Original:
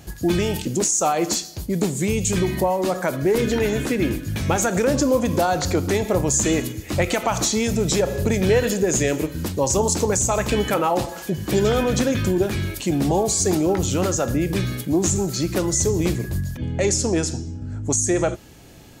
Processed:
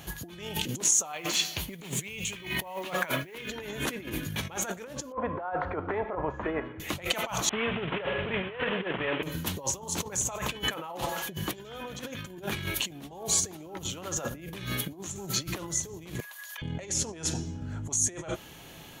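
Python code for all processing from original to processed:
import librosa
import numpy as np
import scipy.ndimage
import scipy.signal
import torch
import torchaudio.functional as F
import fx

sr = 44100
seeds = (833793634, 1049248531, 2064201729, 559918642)

y = fx.chain(x, sr, fx.peak_eq(hz=2500.0, db=11.0, octaves=1.1),
    fx.quant_companded(bits=6), at=(1.13, 3.5))
y = fx.chain(y, sr, fx.lowpass(hz=1600.0, slope=24),
    fx.peak_eq(hz=160.0, db=-12.5, octaves=2.0), at=(5.12, 6.8))
y = fx.chain(y, sr, fx.cvsd(bps=16000),
    fx.tilt_eq(slope=2.0), at=(7.49, 9.23))
y = fx.chain(y, sr, fx.highpass(hz=850.0, slope=24),
    fx.over_compress(threshold_db=-46.0, ratio=-1.0), at=(16.2, 16.62))
y = fx.graphic_eq_31(y, sr, hz=(160, 1000, 3150, 5000, 8000), db=(7, 4, 5, -8, -8))
y = fx.over_compress(y, sr, threshold_db=-25.0, ratio=-0.5)
y = fx.low_shelf(y, sr, hz=470.0, db=-11.0)
y = y * librosa.db_to_amplitude(-2.0)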